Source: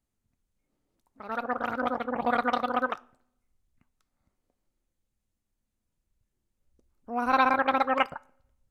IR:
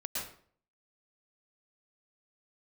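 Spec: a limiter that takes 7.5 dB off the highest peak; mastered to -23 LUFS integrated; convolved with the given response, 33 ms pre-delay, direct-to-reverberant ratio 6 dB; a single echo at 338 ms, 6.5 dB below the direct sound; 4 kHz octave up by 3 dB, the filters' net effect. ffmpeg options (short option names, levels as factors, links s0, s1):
-filter_complex "[0:a]equalizer=f=4000:t=o:g=4,alimiter=limit=0.158:level=0:latency=1,aecho=1:1:338:0.473,asplit=2[s0][s1];[1:a]atrim=start_sample=2205,adelay=33[s2];[s1][s2]afir=irnorm=-1:irlink=0,volume=0.376[s3];[s0][s3]amix=inputs=2:normalize=0,volume=1.78"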